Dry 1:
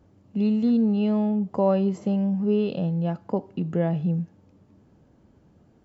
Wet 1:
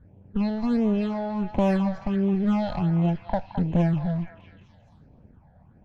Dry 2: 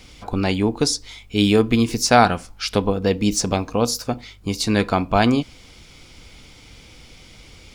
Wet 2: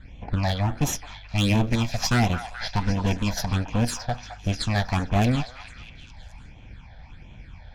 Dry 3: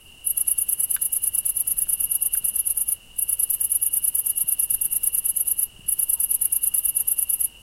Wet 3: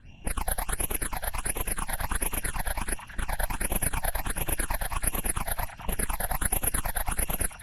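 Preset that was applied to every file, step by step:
lower of the sound and its delayed copy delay 1.2 ms
in parallel at 0 dB: downward compressor 12 to 1, threshold −30 dBFS
on the sum: low-pass that shuts in the quiet parts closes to 1,500 Hz, open at −14 dBFS
all-pass phaser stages 8, 1.4 Hz, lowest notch 330–1,500 Hz
hard clipping −12.5 dBFS
echo through a band-pass that steps 214 ms, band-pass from 1,100 Hz, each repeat 0.7 octaves, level −6 dB
normalise the peak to −12 dBFS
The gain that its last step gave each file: 0.0, −2.5, −0.5 decibels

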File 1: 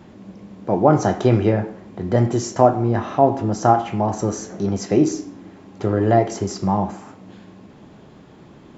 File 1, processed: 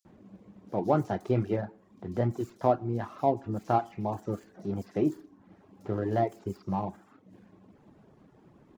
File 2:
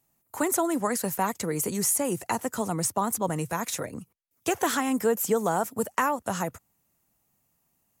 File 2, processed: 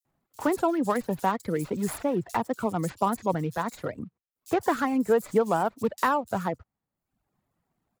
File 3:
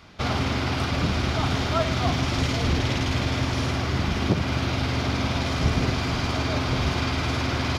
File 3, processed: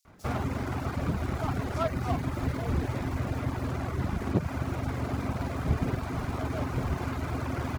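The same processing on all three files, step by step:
running median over 15 samples
reverb reduction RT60 0.75 s
multiband delay without the direct sound highs, lows 50 ms, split 4,900 Hz
normalise the peak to −12 dBFS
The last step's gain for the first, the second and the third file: −10.5, +2.5, −3.5 decibels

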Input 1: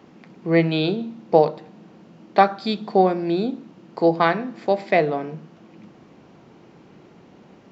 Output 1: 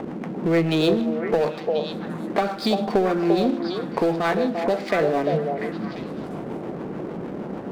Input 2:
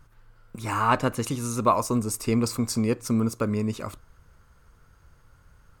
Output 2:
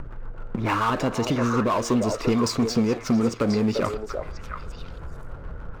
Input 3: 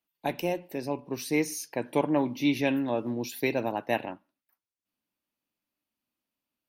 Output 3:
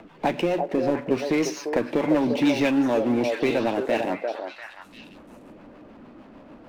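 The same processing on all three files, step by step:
low-pass filter 6,900 Hz 24 dB per octave
low-pass that shuts in the quiet parts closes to 960 Hz, open at −19 dBFS
parametric band 96 Hz −6.5 dB 1 octave
in parallel at −1 dB: upward compression, threshold −26 dBFS
on the sum: leveller curve on the samples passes 1
downward compressor 3 to 1, threshold −20 dBFS
rotating-speaker cabinet horn 6.7 Hz
power curve on the samples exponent 0.7
on a send: echo through a band-pass that steps 346 ms, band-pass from 560 Hz, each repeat 1.4 octaves, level −1.5 dB
on the sum: loudness normalisation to −24 LKFS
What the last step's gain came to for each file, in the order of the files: −2.0, −1.5, −1.0 decibels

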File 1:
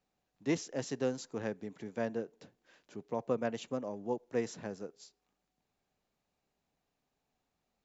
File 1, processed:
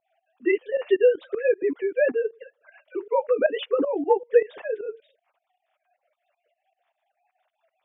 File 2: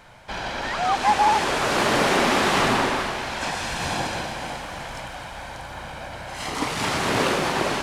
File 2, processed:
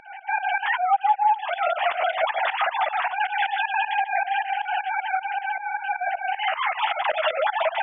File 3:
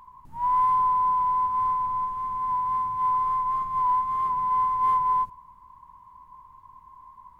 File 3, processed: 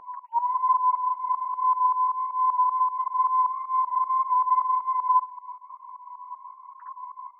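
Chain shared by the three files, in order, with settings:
three sine waves on the formant tracks
dynamic equaliser 1,200 Hz, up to −5 dB, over −32 dBFS, Q 0.86
downward compressor 5 to 1, threshold −34 dBFS
flanger 0.38 Hz, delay 8.8 ms, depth 1.8 ms, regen −22%
fake sidechain pumping 156 BPM, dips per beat 2, −17 dB, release 158 ms
loudness normalisation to −24 LKFS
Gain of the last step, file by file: +23.5, +18.0, +17.5 decibels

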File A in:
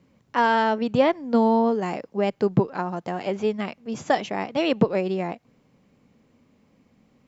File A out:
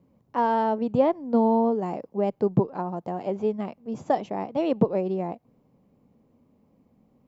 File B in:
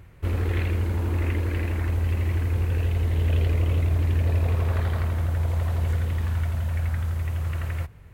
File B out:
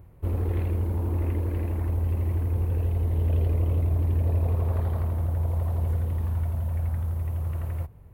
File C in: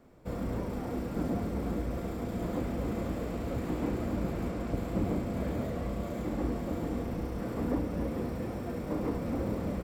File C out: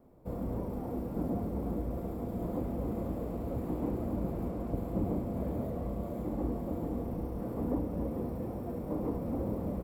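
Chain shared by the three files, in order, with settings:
flat-topped bell 3,300 Hz −12 dB 2.9 octaves
level −1.5 dB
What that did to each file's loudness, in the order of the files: −2.0, −1.5, −1.5 LU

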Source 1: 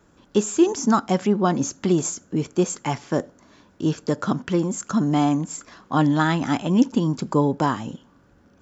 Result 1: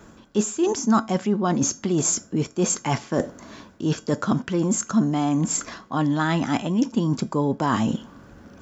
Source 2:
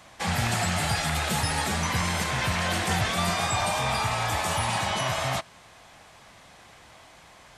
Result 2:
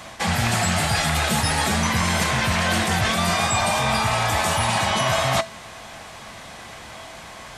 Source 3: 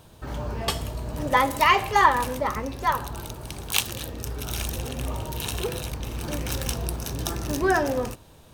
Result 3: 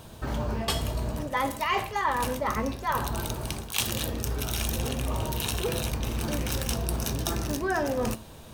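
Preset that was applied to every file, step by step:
reversed playback
downward compressor 6 to 1, threshold −30 dBFS
reversed playback
tuned comb filter 220 Hz, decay 0.28 s, harmonics odd, mix 60%
normalise the peak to −9 dBFS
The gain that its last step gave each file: +17.5, +19.0, +12.0 decibels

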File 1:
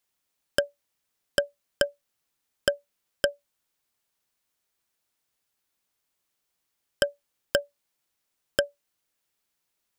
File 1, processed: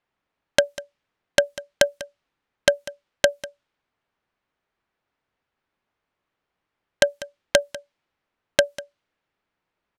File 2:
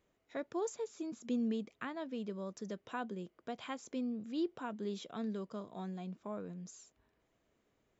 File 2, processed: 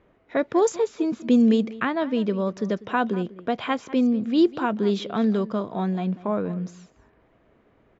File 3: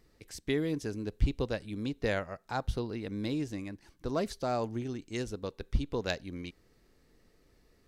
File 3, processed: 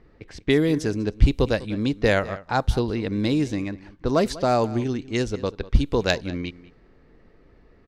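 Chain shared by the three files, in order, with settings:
wrap-around overflow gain 9 dB
single-tap delay 196 ms −18 dB
low-pass that shuts in the quiet parts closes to 2,000 Hz, open at −27.5 dBFS
loudness normalisation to −24 LKFS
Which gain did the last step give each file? +7.5, +17.0, +11.0 decibels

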